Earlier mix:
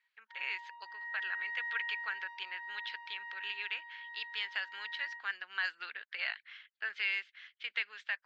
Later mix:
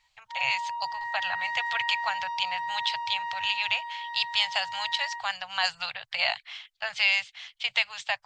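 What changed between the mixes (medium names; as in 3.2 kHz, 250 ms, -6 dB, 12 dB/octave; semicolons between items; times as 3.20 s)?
speech: add elliptic band-stop 120–730 Hz, stop band 50 dB; master: remove ladder band-pass 1.8 kHz, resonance 60%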